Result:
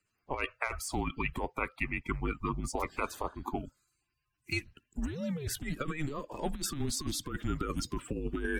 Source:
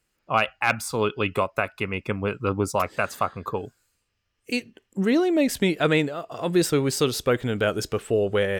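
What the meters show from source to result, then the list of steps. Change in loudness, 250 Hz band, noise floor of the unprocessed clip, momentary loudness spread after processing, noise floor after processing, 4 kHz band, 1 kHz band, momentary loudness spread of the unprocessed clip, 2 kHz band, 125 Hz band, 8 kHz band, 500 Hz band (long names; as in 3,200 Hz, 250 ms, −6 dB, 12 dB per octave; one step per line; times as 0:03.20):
−11.5 dB, −11.5 dB, −75 dBFS, 5 LU, −82 dBFS, −10.5 dB, −10.5 dB, 8 LU, −10.0 dB, −9.0 dB, −6.0 dB, −16.5 dB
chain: spectral magnitudes quantised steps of 30 dB
frequency shifter −150 Hz
compressor whose output falls as the input rises −24 dBFS, ratio −0.5
level −8 dB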